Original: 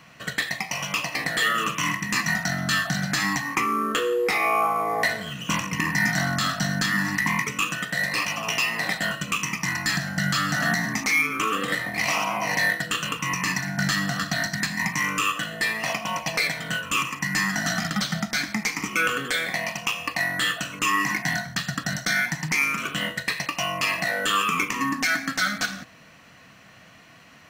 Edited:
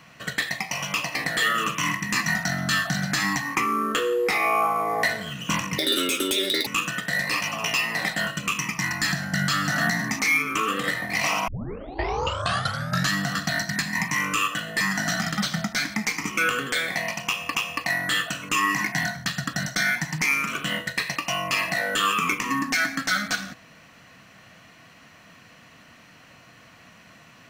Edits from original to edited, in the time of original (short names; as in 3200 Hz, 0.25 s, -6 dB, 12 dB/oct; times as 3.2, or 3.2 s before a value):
5.78–7.51 speed 195%
12.32 tape start 1.65 s
15.65–17.39 cut
19.85–20.13 loop, 2 plays